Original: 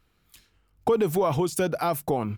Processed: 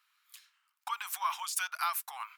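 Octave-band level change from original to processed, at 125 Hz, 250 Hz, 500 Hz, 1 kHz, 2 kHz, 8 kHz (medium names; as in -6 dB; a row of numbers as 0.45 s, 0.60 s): under -40 dB, under -40 dB, -36.0 dB, -5.5 dB, 0.0 dB, 0.0 dB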